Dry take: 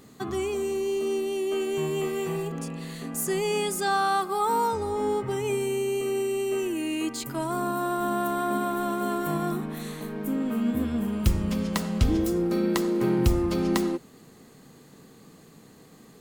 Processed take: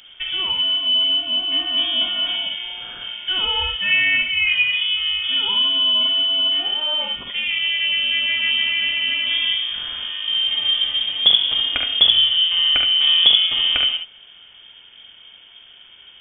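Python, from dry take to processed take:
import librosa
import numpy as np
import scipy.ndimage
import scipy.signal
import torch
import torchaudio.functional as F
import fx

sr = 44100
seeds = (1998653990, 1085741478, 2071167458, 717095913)

y = fx.room_early_taps(x, sr, ms=(46, 71), db=(-7.0, -5.5))
y = fx.freq_invert(y, sr, carrier_hz=3400)
y = y * librosa.db_to_amplitude(5.0)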